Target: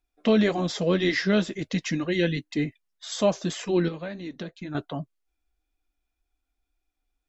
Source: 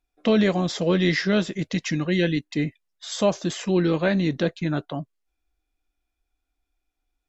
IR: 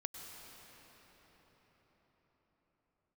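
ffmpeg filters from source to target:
-filter_complex "[0:a]asettb=1/sr,asplit=3[a][b][c];[a]atrim=end=3.884[d];[b]atrim=start=3.88:end=4.75,asetpts=PTS-STARTPTS,afade=t=in:d=0.004:c=qsin,afade=t=out:st=0.866:d=0.004:c=qsin,acompressor=threshold=-30dB:ratio=6[e];[c]atrim=start=4.746[f];[d][e]acrossfade=d=0.004:c1=hsin:c2=qsin[g];[g][f]acrossfade=d=0.004:c1=qsin:c2=hsin,flanger=delay=2.3:depth=2.8:regen=-47:speed=1.9:shape=triangular,volume=2dB"

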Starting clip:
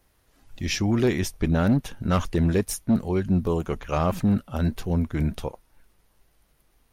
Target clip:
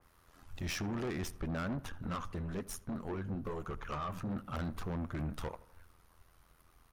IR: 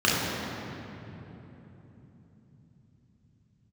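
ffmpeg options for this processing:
-filter_complex "[0:a]equalizer=f=1.2k:w=2:g=10,acompressor=threshold=-24dB:ratio=6,tremolo=f=84:d=0.75,asettb=1/sr,asplit=3[a][b][c];[a]atrim=end=1.894[d];[b]atrim=start=1.89:end=4.3,asetpts=PTS-STARTPTS,afade=t=in:d=0.004:c=qsin,afade=t=out:st=2.406:d=0.004:c=qsin,flanger=delay=0.6:depth=9.6:regen=61:speed=1.1:shape=sinusoidal[e];[c]atrim=start=4.296[f];[d][e]acrossfade=d=0.004:c1=hsin:c2=qsin[g];[g][f]acrossfade=d=0.004:c1=qsin:c2=hsin,asoftclip=type=tanh:threshold=-34.5dB,asplit=2[h][i];[i]adelay=80,lowpass=f=2.4k:p=1,volume=-18.5dB,asplit=2[j][k];[k]adelay=80,lowpass=f=2.4k:p=1,volume=0.51,asplit=2[l][m];[m]adelay=80,lowpass=f=2.4k:p=1,volume=0.51,asplit=2[n][o];[o]adelay=80,lowpass=f=2.4k:p=1,volume=0.51[p];[h][j][l][n][p]amix=inputs=5:normalize=0,adynamicequalizer=threshold=0.00158:dfrequency=2800:dqfactor=0.7:tfrequency=2800:tqfactor=0.7:attack=5:release=100:ratio=0.375:range=2.5:mode=cutabove:tftype=highshelf,volume=1dB"

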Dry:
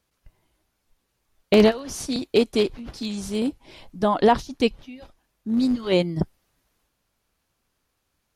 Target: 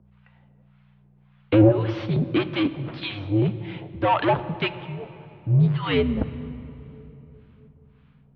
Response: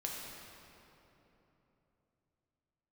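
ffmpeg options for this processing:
-filter_complex "[0:a]asplit=2[a][b];[b]highpass=f=720:p=1,volume=21dB,asoftclip=type=tanh:threshold=-5.5dB[c];[a][c]amix=inputs=2:normalize=0,lowpass=f=2.1k:p=1,volume=-6dB,acrossover=split=840[d][e];[d]aeval=exprs='val(0)*(1-1/2+1/2*cos(2*PI*1.8*n/s))':c=same[f];[e]aeval=exprs='val(0)*(1-1/2-1/2*cos(2*PI*1.8*n/s))':c=same[g];[f][g]amix=inputs=2:normalize=0,aeval=exprs='val(0)+0.00501*(sin(2*PI*60*n/s)+sin(2*PI*2*60*n/s)/2+sin(2*PI*3*60*n/s)/3+sin(2*PI*4*60*n/s)/4+sin(2*PI*5*60*n/s)/5)':c=same,asplit=2[h][i];[1:a]atrim=start_sample=2205,lowshelf=f=200:g=11[j];[i][j]afir=irnorm=-1:irlink=0,volume=-11.5dB[k];[h][k]amix=inputs=2:normalize=0,highpass=f=190:t=q:w=0.5412,highpass=f=190:t=q:w=1.307,lowpass=f=3.5k:t=q:w=0.5176,lowpass=f=3.5k:t=q:w=0.7071,lowpass=f=3.5k:t=q:w=1.932,afreqshift=-100,volume=-1dB"

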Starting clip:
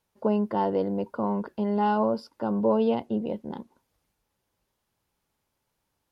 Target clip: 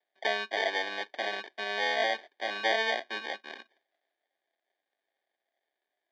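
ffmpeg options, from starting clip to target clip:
-af "acrusher=samples=33:mix=1:aa=0.000001,highpass=f=420:w=0.5412,highpass=f=420:w=1.3066,equalizer=f=480:t=q:w=4:g=-9,equalizer=f=690:t=q:w=4:g=7,equalizer=f=970:t=q:w=4:g=-8,equalizer=f=1.7k:t=q:w=4:g=9,equalizer=f=2.5k:t=q:w=4:g=4,equalizer=f=3.8k:t=q:w=4:g=8,lowpass=f=4.7k:w=0.5412,lowpass=f=4.7k:w=1.3066,volume=-3.5dB"

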